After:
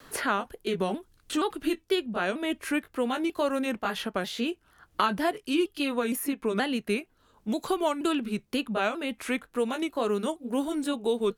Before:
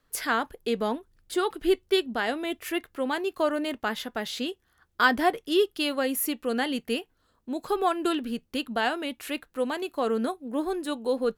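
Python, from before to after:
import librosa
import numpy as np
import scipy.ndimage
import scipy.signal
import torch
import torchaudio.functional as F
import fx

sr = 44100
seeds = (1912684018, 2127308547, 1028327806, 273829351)

y = fx.pitch_ramps(x, sr, semitones=-3.0, every_ms=471)
y = fx.vibrato(y, sr, rate_hz=0.73, depth_cents=15.0)
y = fx.band_squash(y, sr, depth_pct=70)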